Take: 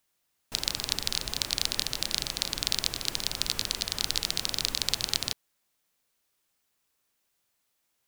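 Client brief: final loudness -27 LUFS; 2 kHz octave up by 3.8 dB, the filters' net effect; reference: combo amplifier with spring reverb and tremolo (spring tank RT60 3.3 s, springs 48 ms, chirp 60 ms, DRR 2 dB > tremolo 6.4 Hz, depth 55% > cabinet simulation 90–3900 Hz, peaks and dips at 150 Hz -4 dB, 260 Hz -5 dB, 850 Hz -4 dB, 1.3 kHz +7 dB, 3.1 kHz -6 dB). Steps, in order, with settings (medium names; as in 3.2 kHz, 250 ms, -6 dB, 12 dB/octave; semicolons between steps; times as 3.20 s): peaking EQ 2 kHz +5 dB; spring tank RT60 3.3 s, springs 48 ms, chirp 60 ms, DRR 2 dB; tremolo 6.4 Hz, depth 55%; cabinet simulation 90–3900 Hz, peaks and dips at 150 Hz -4 dB, 260 Hz -5 dB, 850 Hz -4 dB, 1.3 kHz +7 dB, 3.1 kHz -6 dB; trim +8 dB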